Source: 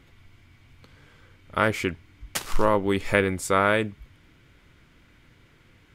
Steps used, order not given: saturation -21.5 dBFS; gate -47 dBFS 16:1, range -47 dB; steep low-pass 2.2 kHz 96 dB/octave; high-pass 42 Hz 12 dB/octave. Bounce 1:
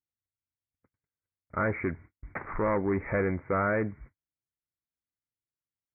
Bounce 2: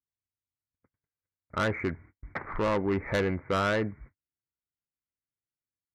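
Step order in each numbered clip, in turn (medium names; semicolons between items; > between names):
high-pass > saturation > gate > steep low-pass; high-pass > gate > steep low-pass > saturation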